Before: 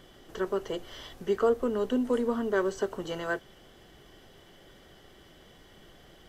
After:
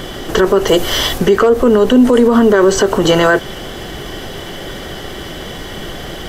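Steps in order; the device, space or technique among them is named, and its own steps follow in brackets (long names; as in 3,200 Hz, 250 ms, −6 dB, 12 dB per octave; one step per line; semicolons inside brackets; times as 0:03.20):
loud club master (downward compressor 1.5 to 1, threshold −31 dBFS, peak gain reduction 4.5 dB; hard clipping −19.5 dBFS, distortion −31 dB; boost into a limiter +29 dB)
0:00.67–0:01.18: high-shelf EQ 7,000 Hz +10 dB
level −1 dB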